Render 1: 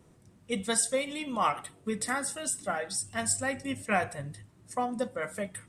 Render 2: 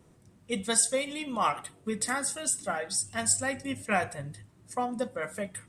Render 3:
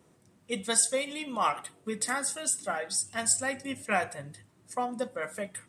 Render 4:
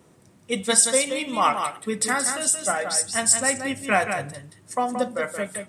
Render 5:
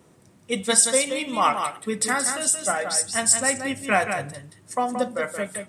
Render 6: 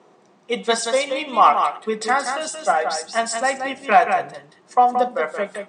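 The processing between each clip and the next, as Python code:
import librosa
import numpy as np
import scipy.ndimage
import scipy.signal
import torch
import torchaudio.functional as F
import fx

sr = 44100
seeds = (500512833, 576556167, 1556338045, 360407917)

y1 = fx.dynamic_eq(x, sr, hz=6700.0, q=0.78, threshold_db=-43.0, ratio=4.0, max_db=4)
y2 = fx.highpass(y1, sr, hz=220.0, slope=6)
y3 = y2 + 10.0 ** (-7.0 / 20.0) * np.pad(y2, (int(176 * sr / 1000.0), 0))[:len(y2)]
y3 = y3 * librosa.db_to_amplitude(7.0)
y4 = y3
y5 = fx.fold_sine(y4, sr, drive_db=4, ceiling_db=-2.0)
y5 = fx.cabinet(y5, sr, low_hz=200.0, low_slope=24, high_hz=6100.0, hz=(270.0, 410.0, 750.0, 1100.0, 5300.0), db=(-6, 5, 9, 6, -3))
y5 = y5 * librosa.db_to_amplitude(-6.0)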